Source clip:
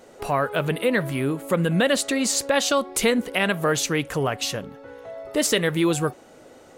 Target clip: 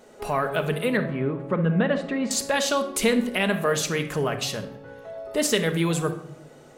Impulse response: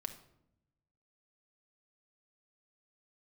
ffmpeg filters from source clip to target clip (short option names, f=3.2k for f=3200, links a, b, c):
-filter_complex "[0:a]asettb=1/sr,asplit=3[a][b][c];[a]atrim=end=0.974[d];[b]atrim=start=0.97:end=2.31,asetpts=PTS-STARTPTS,afade=t=in:d=0.004:c=qsin,afade=t=out:st=1.336:d=0.004:c=qsin,lowpass=1.8k[e];[c]atrim=start=2.306[f];[d][e]acrossfade=d=0.004:c1=hsin:c2=qsin[g];[g][f]acrossfade=d=0.004:c1=qsin:c2=hsin[h];[1:a]atrim=start_sample=2205[i];[h][i]afir=irnorm=-1:irlink=0"